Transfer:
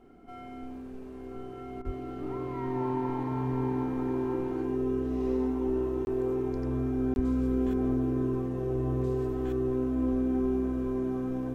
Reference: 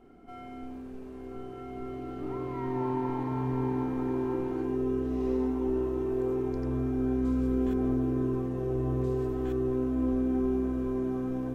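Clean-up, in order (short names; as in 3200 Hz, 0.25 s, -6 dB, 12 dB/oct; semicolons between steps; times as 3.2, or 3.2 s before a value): 1.85–1.97 HPF 140 Hz 24 dB/oct; 7.15–7.27 HPF 140 Hz 24 dB/oct; interpolate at 6.05/7.14, 21 ms; interpolate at 1.82, 28 ms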